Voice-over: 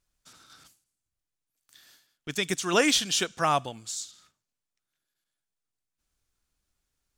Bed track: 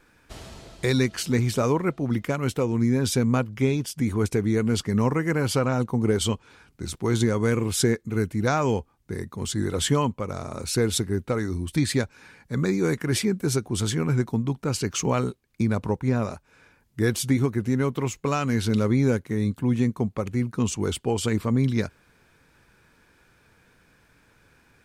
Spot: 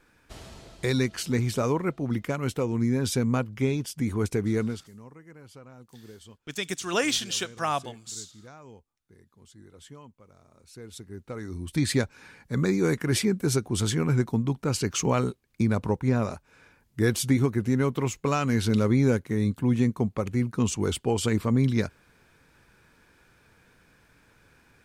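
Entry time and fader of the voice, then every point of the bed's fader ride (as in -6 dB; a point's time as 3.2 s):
4.20 s, -3.0 dB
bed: 4.65 s -3 dB
4.89 s -25 dB
10.62 s -25 dB
11.89 s -0.5 dB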